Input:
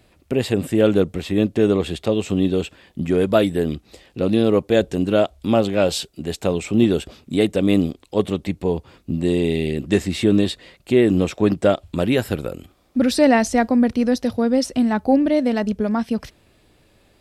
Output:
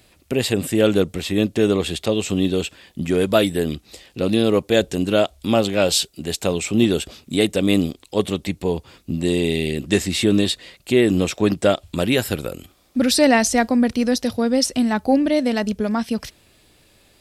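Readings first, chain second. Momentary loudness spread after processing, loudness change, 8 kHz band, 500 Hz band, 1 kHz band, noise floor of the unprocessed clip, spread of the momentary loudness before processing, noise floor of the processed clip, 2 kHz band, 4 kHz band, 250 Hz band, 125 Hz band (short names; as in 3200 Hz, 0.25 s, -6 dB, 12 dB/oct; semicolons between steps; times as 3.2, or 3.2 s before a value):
9 LU, 0.0 dB, +8.0 dB, -0.5 dB, 0.0 dB, -58 dBFS, 9 LU, -57 dBFS, +3.0 dB, +6.0 dB, -1.0 dB, -1.0 dB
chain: high shelf 2500 Hz +10 dB; gain -1 dB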